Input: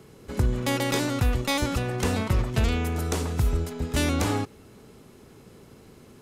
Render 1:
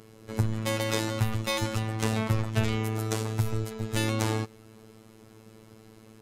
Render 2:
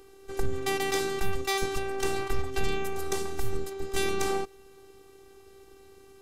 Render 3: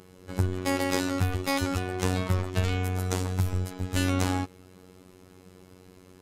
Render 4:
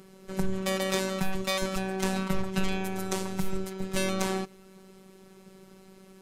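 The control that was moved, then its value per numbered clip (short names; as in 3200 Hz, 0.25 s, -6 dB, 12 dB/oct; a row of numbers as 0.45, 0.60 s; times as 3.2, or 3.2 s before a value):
robotiser, frequency: 110, 390, 92, 190 Hz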